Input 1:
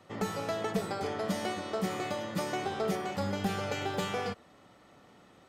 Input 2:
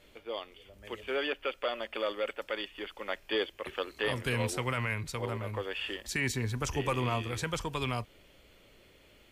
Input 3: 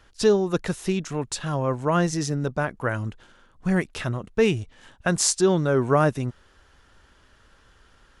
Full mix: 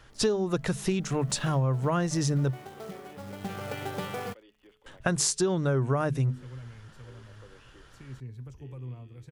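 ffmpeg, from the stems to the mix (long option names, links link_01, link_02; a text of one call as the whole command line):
ffmpeg -i stem1.wav -i stem2.wav -i stem3.wav -filter_complex "[0:a]lowpass=3300,acrusher=bits=3:mode=log:mix=0:aa=0.000001,aeval=exprs='sgn(val(0))*max(abs(val(0))-0.00237,0)':channel_layout=same,volume=-1dB,afade=type=in:start_time=1.02:duration=0.5:silence=0.298538,afade=type=in:start_time=3.24:duration=0.49:silence=0.354813[link_01];[1:a]bandreject=frequency=214.2:width_type=h:width=4,bandreject=frequency=428.4:width_type=h:width=4,bandreject=frequency=642.6:width_type=h:width=4,bandreject=frequency=856.8:width_type=h:width=4,bandreject=frequency=1071:width_type=h:width=4,bandreject=frequency=1285.2:width_type=h:width=4,bandreject=frequency=1499.4:width_type=h:width=4,bandreject=frequency=1713.6:width_type=h:width=4,bandreject=frequency=1927.8:width_type=h:width=4,bandreject=frequency=2142:width_type=h:width=4,bandreject=frequency=2356.2:width_type=h:width=4,bandreject=frequency=2570.4:width_type=h:width=4,bandreject=frequency=2784.6:width_type=h:width=4,bandreject=frequency=2998.8:width_type=h:width=4,bandreject=frequency=3213:width_type=h:width=4,bandreject=frequency=3427.2:width_type=h:width=4,bandreject=frequency=3641.4:width_type=h:width=4,bandreject=frequency=3855.6:width_type=h:width=4,bandreject=frequency=4069.8:width_type=h:width=4,bandreject=frequency=4284:width_type=h:width=4,bandreject=frequency=4498.2:width_type=h:width=4,bandreject=frequency=4712.4:width_type=h:width=4,bandreject=frequency=4926.6:width_type=h:width=4,bandreject=frequency=5140.8:width_type=h:width=4,bandreject=frequency=5355:width_type=h:width=4,bandreject=frequency=5569.2:width_type=h:width=4,bandreject=frequency=5783.4:width_type=h:width=4,bandreject=frequency=5997.6:width_type=h:width=4,bandreject=frequency=6211.8:width_type=h:width=4,bandreject=frequency=6426:width_type=h:width=4,acrossover=split=490[link_02][link_03];[link_03]acompressor=threshold=-54dB:ratio=2.5[link_04];[link_02][link_04]amix=inputs=2:normalize=0,adelay=1850,volume=-13.5dB[link_05];[2:a]bandreject=frequency=50:width_type=h:width=6,bandreject=frequency=100:width_type=h:width=6,bandreject=frequency=150:width_type=h:width=6,bandreject=frequency=200:width_type=h:width=6,bandreject=frequency=250:width_type=h:width=6,volume=1.5dB,asplit=3[link_06][link_07][link_08];[link_06]atrim=end=2.51,asetpts=PTS-STARTPTS,afade=type=out:start_time=2.506:duration=0.004:curve=hsin[link_09];[link_07]atrim=start=2.51:end=4.86,asetpts=PTS-STARTPTS,volume=0[link_10];[link_08]atrim=start=4.86,asetpts=PTS-STARTPTS,afade=type=in:duration=0.004:curve=hsin[link_11];[link_09][link_10][link_11]concat=n=3:v=0:a=1[link_12];[link_01][link_05][link_12]amix=inputs=3:normalize=0,equalizer=frequency=130:width=5.4:gain=12,acompressor=threshold=-23dB:ratio=6" out.wav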